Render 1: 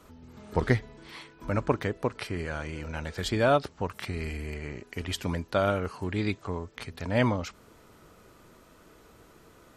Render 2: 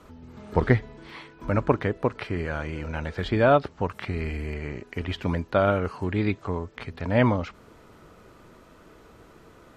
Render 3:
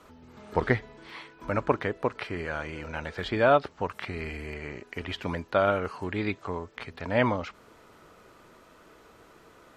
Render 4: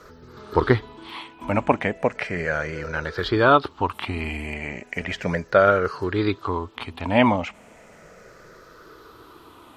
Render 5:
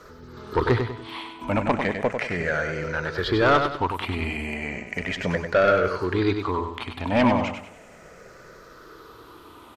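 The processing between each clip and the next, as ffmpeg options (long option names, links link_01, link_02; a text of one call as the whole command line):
ffmpeg -i in.wav -filter_complex "[0:a]aemphasis=mode=reproduction:type=cd,acrossover=split=3800[link_01][link_02];[link_02]acompressor=threshold=-59dB:ratio=4:attack=1:release=60[link_03];[link_01][link_03]amix=inputs=2:normalize=0,volume=4dB" out.wav
ffmpeg -i in.wav -af "lowshelf=frequency=300:gain=-9.5" out.wav
ffmpeg -i in.wav -af "afftfilt=real='re*pow(10,10/40*sin(2*PI*(0.57*log(max(b,1)*sr/1024/100)/log(2)-(-0.35)*(pts-256)/sr)))':imag='im*pow(10,10/40*sin(2*PI*(0.57*log(max(b,1)*sr/1024/100)/log(2)-(-0.35)*(pts-256)/sr)))':win_size=1024:overlap=0.75,volume=5.5dB" out.wav
ffmpeg -i in.wav -filter_complex "[0:a]asoftclip=type=tanh:threshold=-12dB,asplit=2[link_01][link_02];[link_02]aecho=0:1:97|194|291|388:0.473|0.17|0.0613|0.0221[link_03];[link_01][link_03]amix=inputs=2:normalize=0" out.wav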